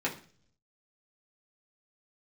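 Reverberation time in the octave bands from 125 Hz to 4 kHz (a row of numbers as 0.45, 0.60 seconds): 0.95, 0.70, 0.50, 0.40, 0.45, 0.50 seconds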